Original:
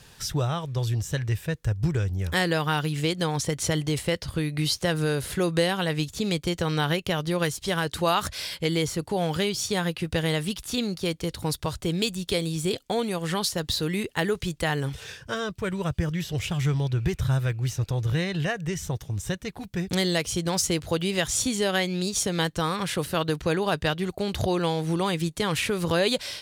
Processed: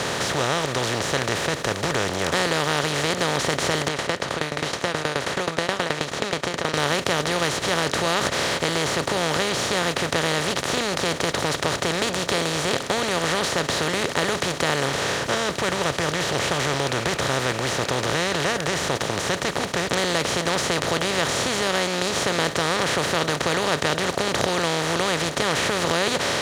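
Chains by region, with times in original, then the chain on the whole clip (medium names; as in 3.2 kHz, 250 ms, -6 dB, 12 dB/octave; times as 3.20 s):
3.88–6.74 s: low-pass 1.7 kHz + tilt EQ +3.5 dB/octave + sawtooth tremolo in dB decaying 9.4 Hz, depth 26 dB
whole clip: spectral levelling over time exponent 0.2; high-pass 260 Hz 6 dB/octave; treble shelf 6.7 kHz -8.5 dB; trim -5 dB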